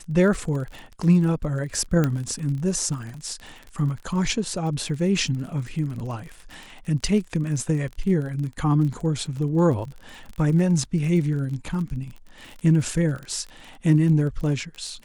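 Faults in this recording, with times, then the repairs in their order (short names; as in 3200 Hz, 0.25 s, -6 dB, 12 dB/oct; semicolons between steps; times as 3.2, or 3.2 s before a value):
crackle 31/s -31 dBFS
2.04 pop -10 dBFS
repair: de-click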